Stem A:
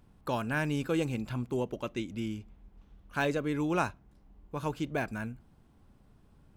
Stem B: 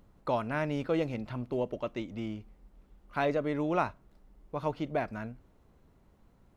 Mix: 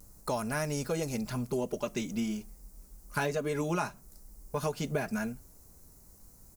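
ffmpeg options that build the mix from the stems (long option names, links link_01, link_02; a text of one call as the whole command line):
ffmpeg -i stem1.wav -i stem2.wav -filter_complex "[0:a]dynaudnorm=framelen=430:gausssize=7:maxgain=11.5dB,flanger=delay=2:depth=5.3:regen=60:speed=1.7:shape=triangular,volume=-3.5dB[link_01];[1:a]lowshelf=frequency=85:gain=7.5,acontrast=88,aexciter=amount=10.5:drive=8.5:freq=5000,adelay=5.2,volume=-7dB,asplit=2[link_02][link_03];[link_03]apad=whole_len=289579[link_04];[link_01][link_04]sidechaingate=range=-33dB:threshold=-43dB:ratio=16:detection=peak[link_05];[link_05][link_02]amix=inputs=2:normalize=0,acompressor=threshold=-28dB:ratio=5" out.wav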